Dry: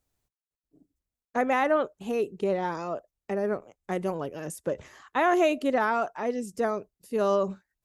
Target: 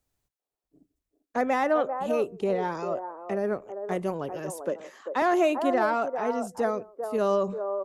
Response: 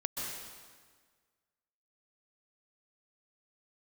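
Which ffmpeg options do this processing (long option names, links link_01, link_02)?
-filter_complex "[0:a]asettb=1/sr,asplit=3[link_01][link_02][link_03];[link_01]atrim=end=4.644[link_04];[link_02]atrim=start=4.64:end=5.22,asetpts=PTS-STARTPTS,afade=type=in:duration=0.004:curve=qsin,afade=type=out:start_time=0.576:duration=0.004:curve=qsin,highpass=frequency=190:width=0.5412,highpass=frequency=190:width=1.3066[link_05];[link_03]atrim=start=5.216[link_06];[link_04][link_05]acrossfade=duration=0.004:curve1=hsin:curve2=qsin[link_07];[link_07][link_06]acrossfade=duration=0.004:curve1=qsin:curve2=hsin,acrossover=split=360|1200[link_08][link_09][link_10];[link_09]aecho=1:1:164|395:0.106|0.668[link_11];[link_10]asoftclip=type=tanh:threshold=-28.5dB[link_12];[link_08][link_11][link_12]amix=inputs=3:normalize=0"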